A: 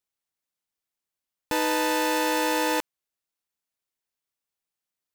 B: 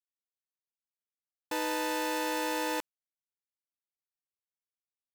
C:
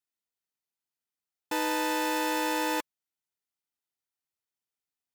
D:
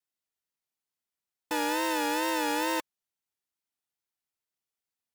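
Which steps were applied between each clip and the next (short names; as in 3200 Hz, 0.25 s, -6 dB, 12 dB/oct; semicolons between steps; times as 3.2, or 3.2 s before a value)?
gate with hold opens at -16 dBFS; gain -7.5 dB
notch comb 560 Hz; gain +4 dB
vibrato 2.3 Hz 83 cents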